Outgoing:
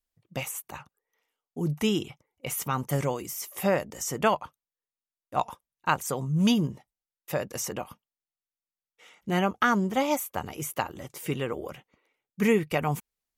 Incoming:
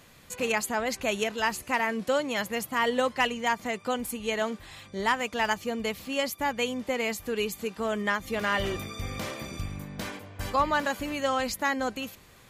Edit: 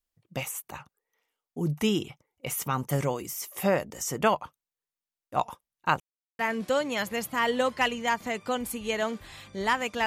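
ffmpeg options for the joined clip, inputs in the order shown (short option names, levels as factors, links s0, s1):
-filter_complex "[0:a]apad=whole_dur=10.06,atrim=end=10.06,asplit=2[s0][s1];[s0]atrim=end=6,asetpts=PTS-STARTPTS,afade=t=out:st=5.996:d=0.004:c=hsin[s2];[s1]atrim=start=6:end=6.39,asetpts=PTS-STARTPTS,volume=0[s3];[1:a]atrim=start=1.78:end=5.45,asetpts=PTS-STARTPTS,afade=t=in:d=0.004:c=hsin[s4];[s2][s3][s4]concat=n=3:v=0:a=1"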